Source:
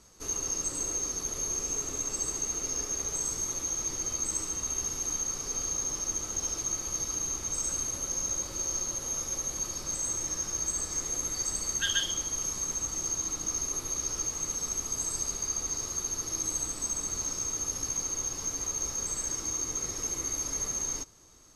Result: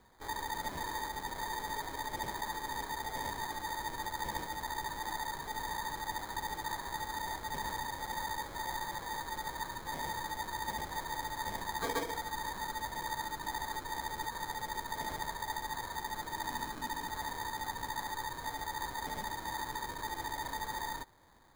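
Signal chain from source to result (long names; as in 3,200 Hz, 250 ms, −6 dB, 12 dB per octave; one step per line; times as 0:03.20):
decimation without filtering 16×
level −6 dB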